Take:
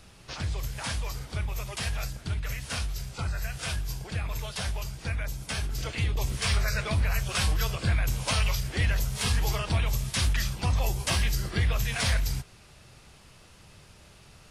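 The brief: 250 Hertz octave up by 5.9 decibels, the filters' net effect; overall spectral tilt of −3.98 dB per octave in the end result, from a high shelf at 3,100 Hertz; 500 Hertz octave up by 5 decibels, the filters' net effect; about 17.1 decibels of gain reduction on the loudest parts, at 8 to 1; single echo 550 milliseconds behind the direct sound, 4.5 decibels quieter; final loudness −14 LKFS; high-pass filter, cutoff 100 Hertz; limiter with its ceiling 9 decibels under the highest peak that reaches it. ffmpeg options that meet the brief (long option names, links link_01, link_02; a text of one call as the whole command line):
ffmpeg -i in.wav -af "highpass=100,equalizer=frequency=250:width_type=o:gain=8.5,equalizer=frequency=500:width_type=o:gain=4,highshelf=frequency=3100:gain=3,acompressor=threshold=-40dB:ratio=8,alimiter=level_in=10dB:limit=-24dB:level=0:latency=1,volume=-10dB,aecho=1:1:550:0.596,volume=29dB" out.wav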